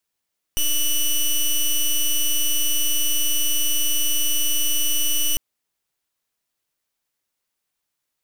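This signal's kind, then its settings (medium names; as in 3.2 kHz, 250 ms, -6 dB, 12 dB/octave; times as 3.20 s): pulse 2.96 kHz, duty 11% -19 dBFS 4.80 s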